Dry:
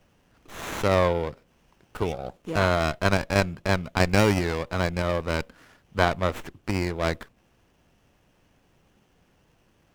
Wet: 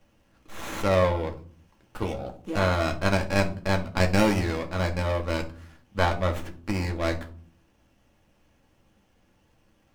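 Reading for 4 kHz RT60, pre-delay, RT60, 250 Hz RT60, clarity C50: 0.30 s, 4 ms, 0.50 s, 0.85 s, 13.5 dB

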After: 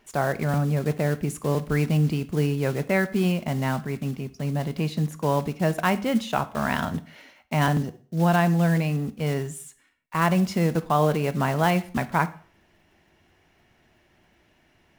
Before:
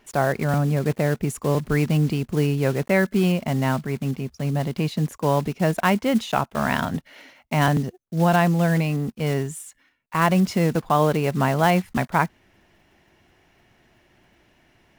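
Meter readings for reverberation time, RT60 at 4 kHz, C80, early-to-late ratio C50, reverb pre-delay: 0.45 s, 0.40 s, 21.5 dB, 17.5 dB, 4 ms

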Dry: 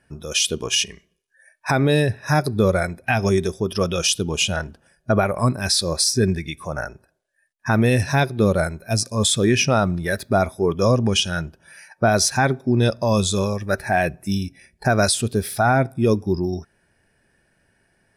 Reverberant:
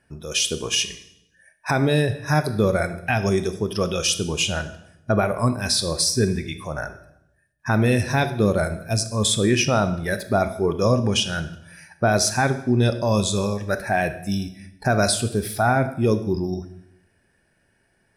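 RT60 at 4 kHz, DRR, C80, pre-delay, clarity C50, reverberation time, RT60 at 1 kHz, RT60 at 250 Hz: 0.75 s, 10.0 dB, 15.0 dB, 21 ms, 12.5 dB, 0.80 s, 0.75 s, 0.95 s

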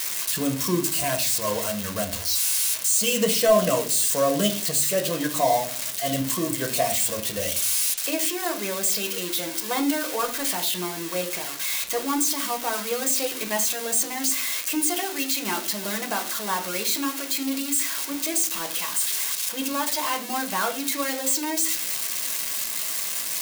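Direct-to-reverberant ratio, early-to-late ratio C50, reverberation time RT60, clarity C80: 3.0 dB, 12.0 dB, 0.40 s, 17.0 dB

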